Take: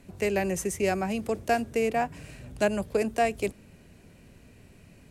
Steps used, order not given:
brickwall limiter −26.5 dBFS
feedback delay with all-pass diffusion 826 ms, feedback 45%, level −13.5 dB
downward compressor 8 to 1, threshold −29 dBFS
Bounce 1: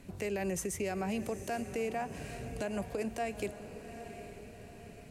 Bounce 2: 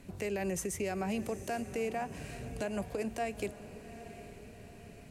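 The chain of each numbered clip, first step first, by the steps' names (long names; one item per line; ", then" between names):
downward compressor, then feedback delay with all-pass diffusion, then brickwall limiter
downward compressor, then brickwall limiter, then feedback delay with all-pass diffusion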